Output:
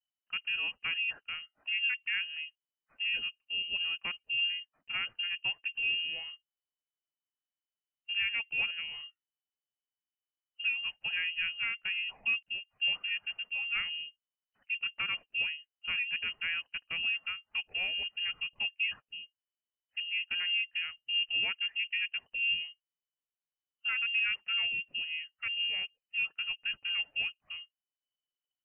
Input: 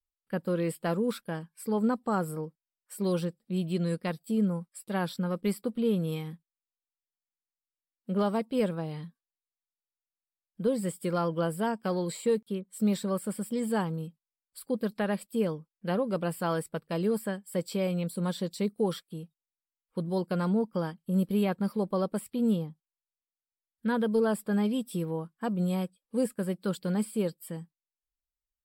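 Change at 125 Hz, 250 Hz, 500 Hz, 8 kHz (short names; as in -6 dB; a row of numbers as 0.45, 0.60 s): under -30 dB, under -35 dB, under -30 dB, under -35 dB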